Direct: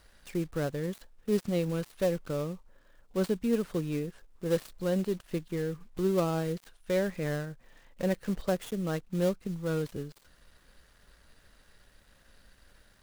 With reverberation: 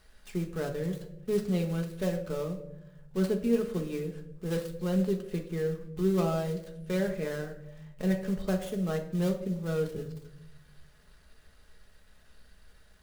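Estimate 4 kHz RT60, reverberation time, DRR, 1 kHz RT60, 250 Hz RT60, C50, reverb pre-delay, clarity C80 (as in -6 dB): 0.50 s, 0.85 s, 2.5 dB, 0.65 s, 1.3 s, 10.5 dB, 5 ms, 13.5 dB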